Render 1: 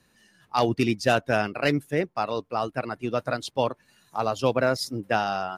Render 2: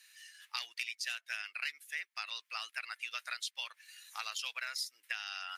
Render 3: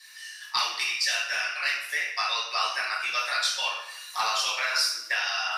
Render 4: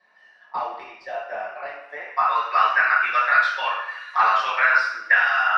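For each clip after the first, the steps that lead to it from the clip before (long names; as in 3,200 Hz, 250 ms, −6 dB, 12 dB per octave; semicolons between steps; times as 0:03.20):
Chebyshev high-pass filter 2,000 Hz, order 3; downward compressor 8 to 1, threshold −44 dBFS, peak gain reduction 19 dB; level +8 dB
convolution reverb RT60 0.75 s, pre-delay 3 ms, DRR −8 dB; level +1 dB
in parallel at −8 dB: soft clipping −22 dBFS, distortion −15 dB; on the sum: low-pass filter sweep 690 Hz → 1,600 Hz, 0:01.84–0:02.60; level +3.5 dB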